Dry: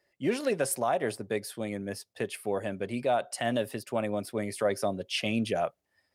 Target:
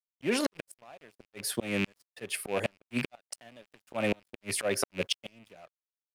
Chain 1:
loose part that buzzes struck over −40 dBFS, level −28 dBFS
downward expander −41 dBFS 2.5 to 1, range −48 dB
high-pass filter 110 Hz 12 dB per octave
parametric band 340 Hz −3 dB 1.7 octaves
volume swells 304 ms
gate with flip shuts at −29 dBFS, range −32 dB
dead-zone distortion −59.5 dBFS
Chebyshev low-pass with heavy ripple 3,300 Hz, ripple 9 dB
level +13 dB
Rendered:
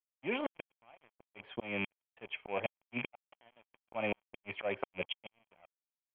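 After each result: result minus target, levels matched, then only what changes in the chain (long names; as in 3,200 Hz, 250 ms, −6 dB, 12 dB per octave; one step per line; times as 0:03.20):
dead-zone distortion: distortion +8 dB; 4,000 Hz band −3.0 dB
change: dead-zone distortion −69 dBFS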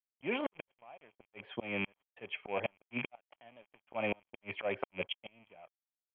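4,000 Hz band −3.0 dB
remove: Chebyshev low-pass with heavy ripple 3,300 Hz, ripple 9 dB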